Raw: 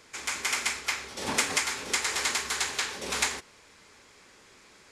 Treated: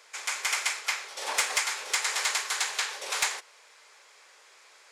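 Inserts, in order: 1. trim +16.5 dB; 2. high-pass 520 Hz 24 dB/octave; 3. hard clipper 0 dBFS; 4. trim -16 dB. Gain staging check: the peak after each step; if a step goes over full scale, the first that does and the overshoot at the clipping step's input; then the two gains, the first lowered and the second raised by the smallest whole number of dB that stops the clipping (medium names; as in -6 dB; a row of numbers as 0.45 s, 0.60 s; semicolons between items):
+5.5 dBFS, +6.5 dBFS, 0.0 dBFS, -16.0 dBFS; step 1, 6.5 dB; step 1 +9.5 dB, step 4 -9 dB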